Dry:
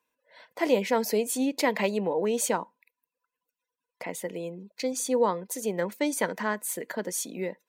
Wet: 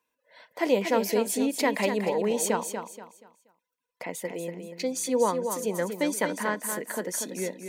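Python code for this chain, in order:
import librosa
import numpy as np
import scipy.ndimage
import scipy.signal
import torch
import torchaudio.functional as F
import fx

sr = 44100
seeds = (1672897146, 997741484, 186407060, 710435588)

y = fx.echo_feedback(x, sr, ms=239, feedback_pct=31, wet_db=-7.5)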